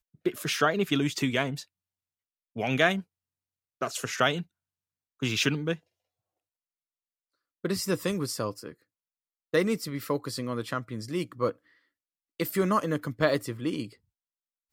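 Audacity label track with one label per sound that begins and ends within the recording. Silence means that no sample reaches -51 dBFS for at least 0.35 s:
2.560000	3.020000	sound
3.810000	4.430000	sound
5.200000	5.790000	sound
7.640000	8.740000	sound
9.540000	11.560000	sound
12.400000	13.950000	sound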